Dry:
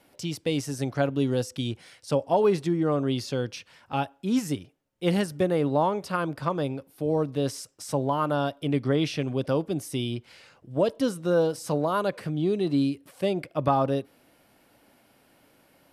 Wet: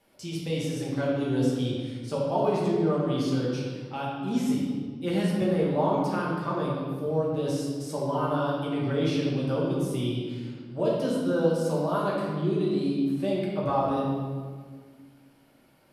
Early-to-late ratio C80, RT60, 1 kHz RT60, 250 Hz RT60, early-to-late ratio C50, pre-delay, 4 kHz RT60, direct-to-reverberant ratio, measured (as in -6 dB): 2.0 dB, 1.7 s, 1.6 s, 2.4 s, -0.5 dB, 5 ms, 1.2 s, -6.0 dB